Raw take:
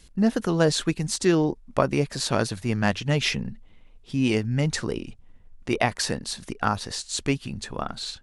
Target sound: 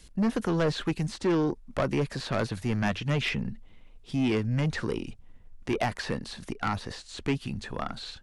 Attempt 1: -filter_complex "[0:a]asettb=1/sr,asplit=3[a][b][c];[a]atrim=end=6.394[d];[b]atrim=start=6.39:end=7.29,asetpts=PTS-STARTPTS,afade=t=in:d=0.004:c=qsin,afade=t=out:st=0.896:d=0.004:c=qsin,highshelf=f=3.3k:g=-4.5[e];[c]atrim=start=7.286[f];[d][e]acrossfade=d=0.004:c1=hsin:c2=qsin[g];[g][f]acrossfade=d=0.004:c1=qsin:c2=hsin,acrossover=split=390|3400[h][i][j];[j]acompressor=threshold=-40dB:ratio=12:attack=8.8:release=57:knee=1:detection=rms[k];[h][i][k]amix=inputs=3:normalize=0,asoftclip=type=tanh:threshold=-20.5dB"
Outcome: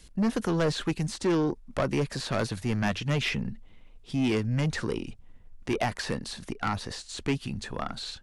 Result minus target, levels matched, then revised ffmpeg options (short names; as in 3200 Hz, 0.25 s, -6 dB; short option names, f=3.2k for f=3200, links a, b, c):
compressor: peak gain reduction -7.5 dB
-filter_complex "[0:a]asettb=1/sr,asplit=3[a][b][c];[a]atrim=end=6.394[d];[b]atrim=start=6.39:end=7.29,asetpts=PTS-STARTPTS,afade=t=in:d=0.004:c=qsin,afade=t=out:st=0.896:d=0.004:c=qsin,highshelf=f=3.3k:g=-4.5[e];[c]atrim=start=7.286[f];[d][e]acrossfade=d=0.004:c1=hsin:c2=qsin[g];[g][f]acrossfade=d=0.004:c1=qsin:c2=hsin,acrossover=split=390|3400[h][i][j];[j]acompressor=threshold=-48dB:ratio=12:attack=8.8:release=57:knee=1:detection=rms[k];[h][i][k]amix=inputs=3:normalize=0,asoftclip=type=tanh:threshold=-20.5dB"